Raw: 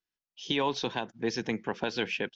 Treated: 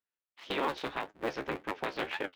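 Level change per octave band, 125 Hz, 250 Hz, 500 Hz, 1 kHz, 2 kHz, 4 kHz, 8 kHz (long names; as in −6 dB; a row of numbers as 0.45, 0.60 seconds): −8.5 dB, −7.0 dB, −3.5 dB, −1.0 dB, −2.5 dB, −7.5 dB, can't be measured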